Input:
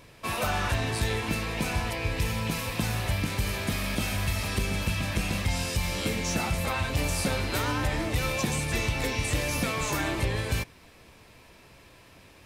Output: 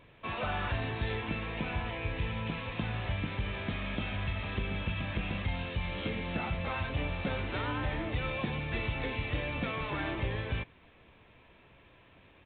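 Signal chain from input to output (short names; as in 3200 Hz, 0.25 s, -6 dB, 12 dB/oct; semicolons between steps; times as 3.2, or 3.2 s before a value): downsampling 8000 Hz; gain -5.5 dB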